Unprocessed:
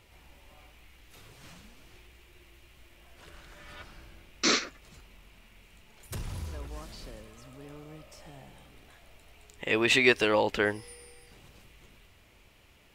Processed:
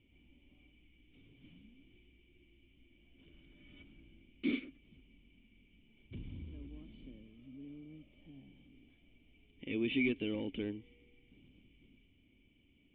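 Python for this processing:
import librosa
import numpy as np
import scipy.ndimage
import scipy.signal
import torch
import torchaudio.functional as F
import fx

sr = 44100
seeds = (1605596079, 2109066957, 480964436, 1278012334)

y = np.clip(x, -10.0 ** (-20.0 / 20.0), 10.0 ** (-20.0 / 20.0))
y = fx.formant_cascade(y, sr, vowel='i')
y = F.gain(torch.from_numpy(y), 3.0).numpy()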